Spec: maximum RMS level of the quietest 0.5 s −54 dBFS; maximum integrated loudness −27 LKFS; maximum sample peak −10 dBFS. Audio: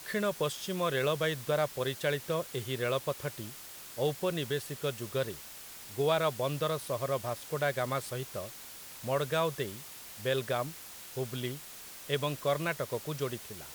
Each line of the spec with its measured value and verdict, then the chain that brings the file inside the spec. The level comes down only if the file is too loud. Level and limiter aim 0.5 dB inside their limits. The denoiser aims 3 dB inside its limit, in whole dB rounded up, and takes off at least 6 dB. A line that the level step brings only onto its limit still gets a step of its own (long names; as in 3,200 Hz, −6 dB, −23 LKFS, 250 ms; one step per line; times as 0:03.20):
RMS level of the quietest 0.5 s −47 dBFS: out of spec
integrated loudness −33.5 LKFS: in spec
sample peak −16.5 dBFS: in spec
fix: broadband denoise 10 dB, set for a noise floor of −47 dBFS